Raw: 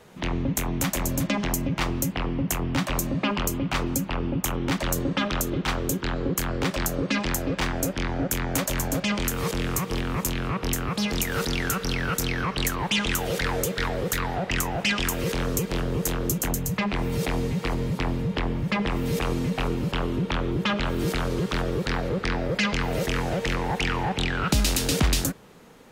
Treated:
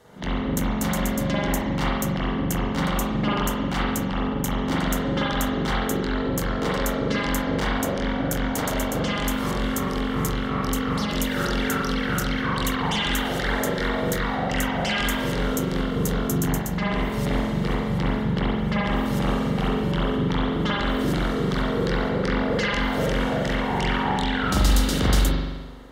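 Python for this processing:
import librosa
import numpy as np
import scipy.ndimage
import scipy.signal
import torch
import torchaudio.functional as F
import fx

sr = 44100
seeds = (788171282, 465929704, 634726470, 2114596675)

y = fx.notch(x, sr, hz=2500.0, q=5.1)
y = fx.cheby_harmonics(y, sr, harmonics=(4, 6), levels_db=(-27, -24), full_scale_db=-9.0)
y = fx.rev_spring(y, sr, rt60_s=1.2, pass_ms=(42,), chirp_ms=30, drr_db=-6.0)
y = y * 10.0 ** (-3.5 / 20.0)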